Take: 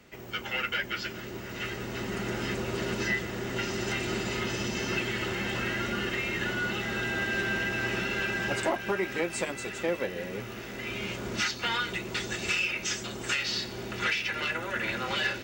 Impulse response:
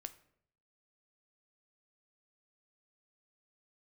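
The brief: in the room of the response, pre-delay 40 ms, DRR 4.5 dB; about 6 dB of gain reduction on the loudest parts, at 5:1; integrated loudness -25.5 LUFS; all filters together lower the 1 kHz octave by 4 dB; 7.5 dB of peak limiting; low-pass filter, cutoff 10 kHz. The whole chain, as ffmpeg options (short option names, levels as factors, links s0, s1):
-filter_complex "[0:a]lowpass=10000,equalizer=f=1000:t=o:g=-6,acompressor=threshold=0.0251:ratio=5,alimiter=level_in=1.78:limit=0.0631:level=0:latency=1,volume=0.562,asplit=2[s0][s1];[1:a]atrim=start_sample=2205,adelay=40[s2];[s1][s2]afir=irnorm=-1:irlink=0,volume=1[s3];[s0][s3]amix=inputs=2:normalize=0,volume=3.35"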